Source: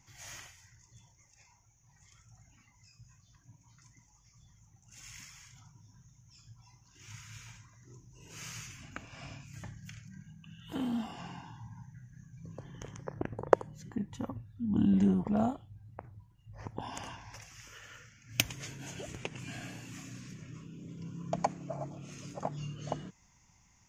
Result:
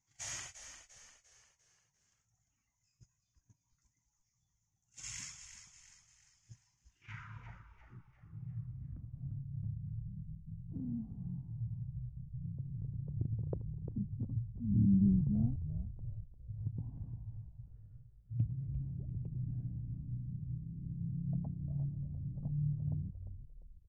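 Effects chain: gate -52 dBFS, range -23 dB; low-pass sweep 8000 Hz -> 130 Hz, 6.58–8.15; frequency-shifting echo 0.348 s, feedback 46%, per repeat -56 Hz, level -9.5 dB; gain +1 dB

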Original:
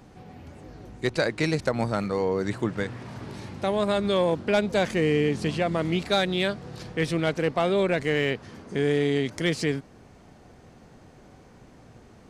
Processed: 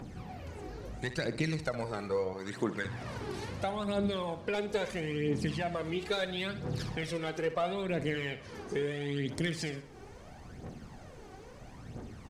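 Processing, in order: 2.33–2.85 HPF 500 Hz 6 dB/oct; compressor 3:1, threshold -35 dBFS, peak gain reduction 12.5 dB; phaser 0.75 Hz, delay 2.7 ms, feedback 59%; feedback echo 63 ms, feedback 43%, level -12 dB

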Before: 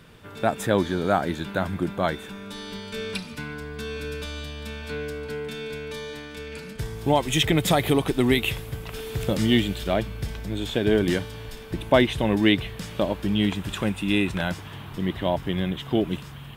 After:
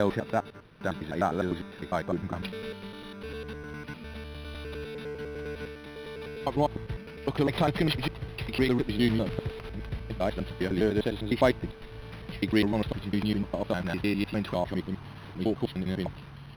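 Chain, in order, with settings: slices in reverse order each 0.101 s, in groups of 8; decimation joined by straight lines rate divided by 6×; gain -4.5 dB

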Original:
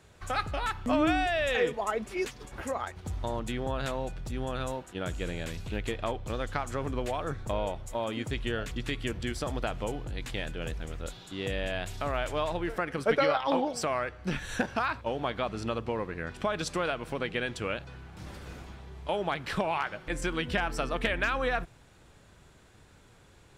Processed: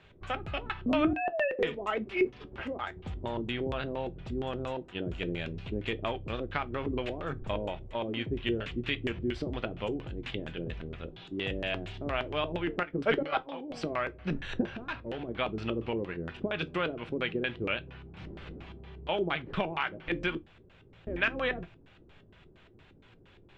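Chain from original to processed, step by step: 1.13–1.59 sine-wave speech; 12.8–13.69 step gate ".xxx.x...x" 152 bpm -12 dB; 14.65–15.29 overloaded stage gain 32 dB; 20.37–21.07 room tone; LFO low-pass square 4.3 Hz 360–2900 Hz; reverb, pre-delay 5 ms, DRR 10.5 dB; gain -2 dB

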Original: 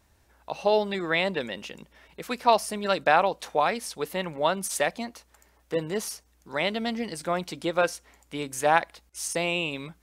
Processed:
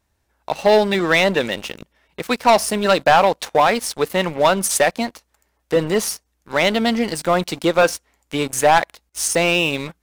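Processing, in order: sample leveller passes 3

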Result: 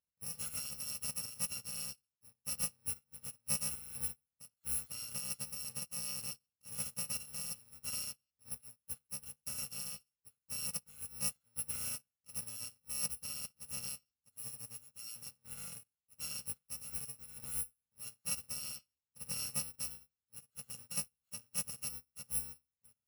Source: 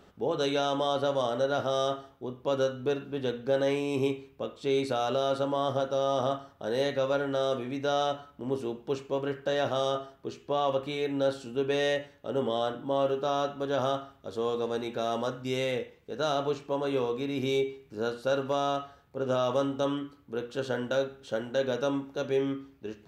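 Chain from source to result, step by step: FFT order left unsorted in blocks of 128 samples; upward expander 2.5:1, over -44 dBFS; gain -7.5 dB

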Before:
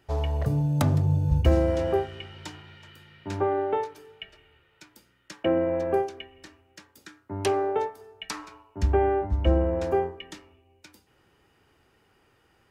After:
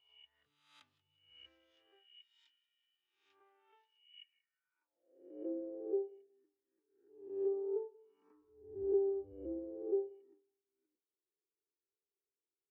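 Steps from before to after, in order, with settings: spectral swells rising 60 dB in 1.03 s; fifteen-band EQ 160 Hz -8 dB, 630 Hz -9 dB, 4000 Hz -7 dB; on a send: thinning echo 0.185 s, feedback 52%, high-pass 670 Hz, level -15.5 dB; on the sum: band-pass sweep 3400 Hz -> 420 Hz, 4.16–5.23; spectral expander 1.5:1; gain -6.5 dB

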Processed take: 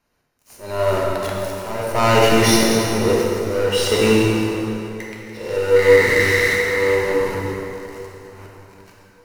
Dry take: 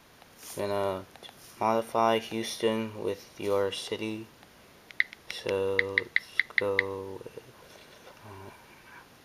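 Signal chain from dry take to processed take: 5.37–7.94 stepped spectrum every 0.2 s; AGC gain up to 5.5 dB; sample leveller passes 5; auto swell 0.641 s; low shelf 61 Hz +9.5 dB; notch 3400 Hz, Q 6; plate-style reverb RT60 3.4 s, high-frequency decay 0.65×, DRR -4 dB; gain -6.5 dB

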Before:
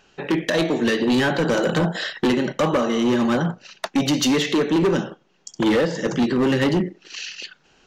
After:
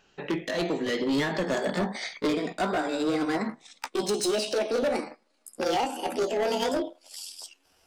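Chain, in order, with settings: gliding pitch shift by +11 st starting unshifted; gain -6.5 dB

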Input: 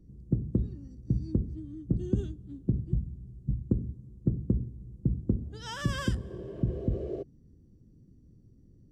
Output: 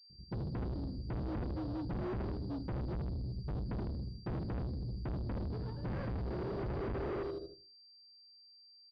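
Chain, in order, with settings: median filter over 41 samples; gate -45 dBFS, range -57 dB; AGC gain up to 12.5 dB; feedback echo 78 ms, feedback 41%, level -11.5 dB; on a send at -17.5 dB: reverb RT60 0.35 s, pre-delay 78 ms; on the sum: low-pass opened by the level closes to 440 Hz, open at -14.5 dBFS; soft clip -35 dBFS, distortion 0 dB; limiter -39 dBFS, peak gain reduction 4 dB; pulse-width modulation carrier 4700 Hz; gain +3 dB

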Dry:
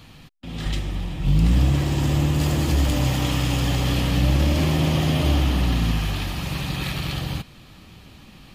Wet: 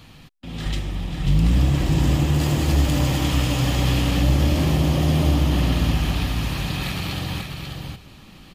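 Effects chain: 4.23–5.52 bell 2400 Hz -4 dB 2 oct; echo 0.541 s -5.5 dB

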